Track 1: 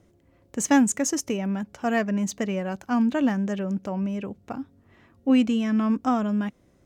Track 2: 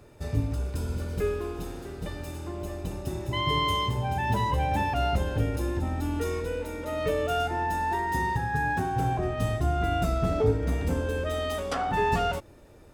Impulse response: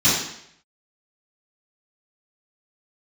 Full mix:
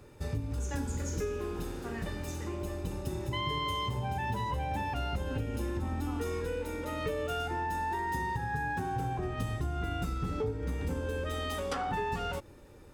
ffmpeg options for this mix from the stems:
-filter_complex "[0:a]highpass=350,volume=-17.5dB,asplit=3[a][b][c];[a]atrim=end=2.56,asetpts=PTS-STARTPTS,afade=t=out:st=2.556:d=0.004:c=hsin[d];[b]atrim=start=2.56:end=3.41,asetpts=PTS-STARTPTS,volume=0[e];[c]atrim=start=3.41,asetpts=PTS-STARTPTS,afade=t=in:d=0.004:c=hsin[f];[d][e][f]concat=n=3:v=0:a=1,asplit=2[g][h];[h]volume=-20dB[i];[1:a]volume=-1dB[j];[2:a]atrim=start_sample=2205[k];[i][k]afir=irnorm=-1:irlink=0[l];[g][j][l]amix=inputs=3:normalize=0,asuperstop=centerf=660:order=4:qfactor=5.7,acompressor=threshold=-30dB:ratio=6"

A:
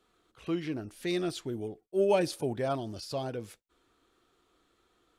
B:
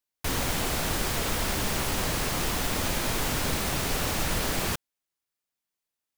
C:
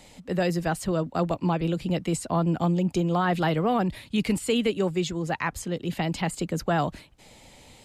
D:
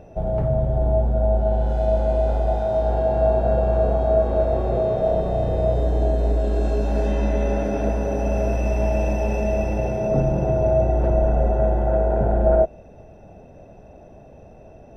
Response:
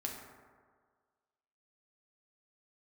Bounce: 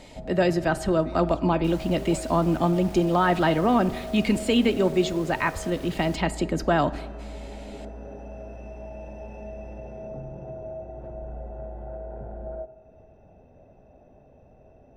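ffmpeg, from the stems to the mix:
-filter_complex "[0:a]volume=-13.5dB[a];[1:a]highshelf=f=7.3k:g=7.5,asoftclip=type=tanh:threshold=-29dB,adelay=1400,volume=-13.5dB,asplit=2[b][c];[c]volume=-10.5dB[d];[2:a]aecho=1:1:3.2:0.35,volume=1.5dB,asplit=2[e][f];[f]volume=-10dB[g];[3:a]acompressor=threshold=-30dB:ratio=2.5,volume=-12dB,asplit=2[h][i];[i]volume=-6dB[j];[4:a]atrim=start_sample=2205[k];[d][g][j]amix=inputs=3:normalize=0[l];[l][k]afir=irnorm=-1:irlink=0[m];[a][b][e][h][m]amix=inputs=5:normalize=0,highshelf=f=7.4k:g=-12"

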